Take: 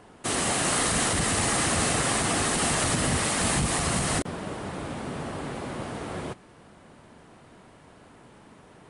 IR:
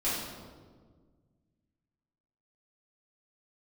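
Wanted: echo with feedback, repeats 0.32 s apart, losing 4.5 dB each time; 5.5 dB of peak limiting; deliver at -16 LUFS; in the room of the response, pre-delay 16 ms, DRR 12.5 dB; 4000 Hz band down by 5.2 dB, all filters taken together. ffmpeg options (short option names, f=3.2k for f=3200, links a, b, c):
-filter_complex "[0:a]equalizer=f=4k:t=o:g=-7,alimiter=limit=-18dB:level=0:latency=1,aecho=1:1:320|640|960|1280|1600|1920|2240|2560|2880:0.596|0.357|0.214|0.129|0.0772|0.0463|0.0278|0.0167|0.01,asplit=2[a][b];[1:a]atrim=start_sample=2205,adelay=16[c];[b][c]afir=irnorm=-1:irlink=0,volume=-21dB[d];[a][d]amix=inputs=2:normalize=0,volume=10.5dB"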